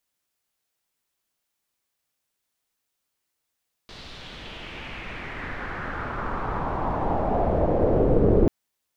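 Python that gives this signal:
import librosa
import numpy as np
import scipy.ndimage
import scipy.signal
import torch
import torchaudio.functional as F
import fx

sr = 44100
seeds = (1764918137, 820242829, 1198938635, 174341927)

y = fx.riser_noise(sr, seeds[0], length_s=4.59, colour='pink', kind='lowpass', start_hz=4300.0, end_hz=400.0, q=2.9, swell_db=27.0, law='exponential')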